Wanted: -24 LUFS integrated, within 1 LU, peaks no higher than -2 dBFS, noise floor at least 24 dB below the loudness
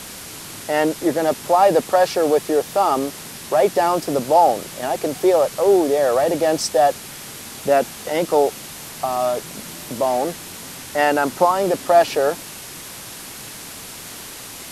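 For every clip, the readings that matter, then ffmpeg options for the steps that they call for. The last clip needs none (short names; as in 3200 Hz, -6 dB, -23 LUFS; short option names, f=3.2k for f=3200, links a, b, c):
noise floor -36 dBFS; noise floor target -43 dBFS; loudness -19.0 LUFS; peak -2.5 dBFS; loudness target -24.0 LUFS
-> -af "afftdn=nr=7:nf=-36"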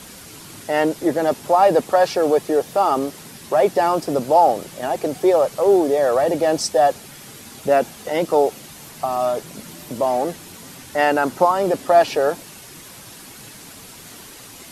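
noise floor -41 dBFS; noise floor target -43 dBFS
-> -af "afftdn=nr=6:nf=-41"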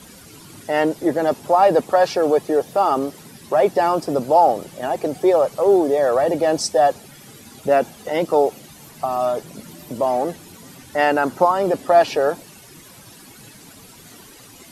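noise floor -44 dBFS; loudness -19.0 LUFS; peak -2.5 dBFS; loudness target -24.0 LUFS
-> -af "volume=-5dB"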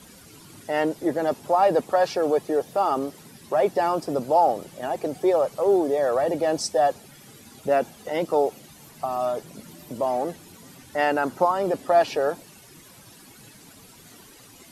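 loudness -24.0 LUFS; peak -7.5 dBFS; noise floor -49 dBFS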